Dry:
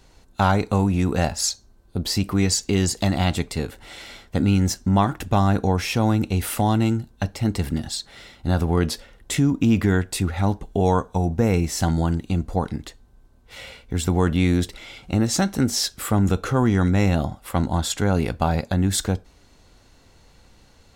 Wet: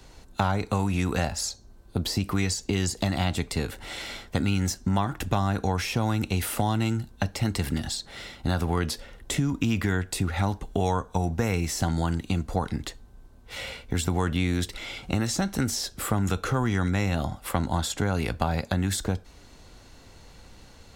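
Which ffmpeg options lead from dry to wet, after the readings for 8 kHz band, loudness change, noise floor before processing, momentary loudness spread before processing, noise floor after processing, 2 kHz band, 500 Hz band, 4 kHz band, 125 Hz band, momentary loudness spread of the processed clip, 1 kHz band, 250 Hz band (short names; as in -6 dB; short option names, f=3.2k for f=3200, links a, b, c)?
-5.0 dB, -5.5 dB, -54 dBFS, 11 LU, -51 dBFS, -1.5 dB, -6.0 dB, -3.5 dB, -5.0 dB, 7 LU, -4.5 dB, -6.5 dB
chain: -filter_complex "[0:a]acrossover=split=97|950[a][b][c];[a]acompressor=threshold=-36dB:ratio=4[d];[b]acompressor=threshold=-30dB:ratio=4[e];[c]acompressor=threshold=-34dB:ratio=4[f];[d][e][f]amix=inputs=3:normalize=0,volume=3.5dB"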